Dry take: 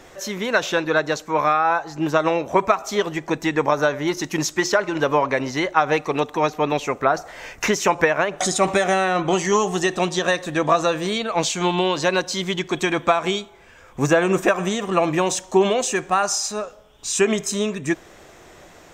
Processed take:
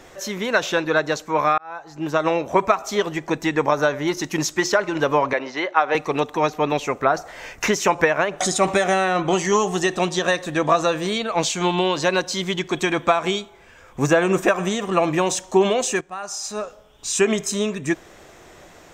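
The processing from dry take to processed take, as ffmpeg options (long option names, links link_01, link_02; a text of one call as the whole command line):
ffmpeg -i in.wav -filter_complex "[0:a]asettb=1/sr,asplit=3[link_01][link_02][link_03];[link_01]atrim=end=5.334[link_04];[link_02]atrim=start=5.33:end=5.95,asetpts=PTS-STARTPTS,afade=type=in:duration=0.004:curve=qsin,afade=type=out:start_time=0.616:duration=0.004:curve=qsin,highpass=380,lowpass=3800[link_05];[link_03]atrim=start=5.946[link_06];[link_04][link_05]acrossfade=duration=0.004:curve1=hsin:curve2=qsin[link_07];[link_07][link_06]acrossfade=duration=0.004:curve1=qsin:curve2=hsin,asplit=3[link_08][link_09][link_10];[link_08]atrim=end=1.58,asetpts=PTS-STARTPTS,afade=type=out:start_time=1.576:duration=0.004:curve=hsin[link_11];[link_09]atrim=start=1.58:end=16.01,asetpts=PTS-STARTPTS,afade=type=in:duration=0.73,afade=type=out:start_time=14.426:duration=0.004:curve=hsin:silence=0.177828[link_12];[link_10]atrim=start=16.01,asetpts=PTS-STARTPTS,afade=type=in:duration=0.61:curve=qua:silence=0.177828[link_13];[link_11][link_12][link_13]concat=n=3:v=0:a=1" out.wav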